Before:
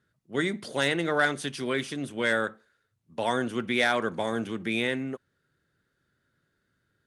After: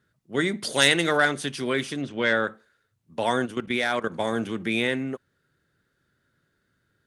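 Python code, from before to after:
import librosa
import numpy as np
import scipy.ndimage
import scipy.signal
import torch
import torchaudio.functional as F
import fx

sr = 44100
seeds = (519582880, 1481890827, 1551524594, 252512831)

y = fx.high_shelf(x, sr, hz=2500.0, db=11.5, at=(0.63, 1.17))
y = fx.lowpass(y, sr, hz=5900.0, slope=24, at=(2.01, 2.46), fade=0.02)
y = fx.level_steps(y, sr, step_db=14, at=(3.45, 4.18), fade=0.02)
y = y * librosa.db_to_amplitude(3.0)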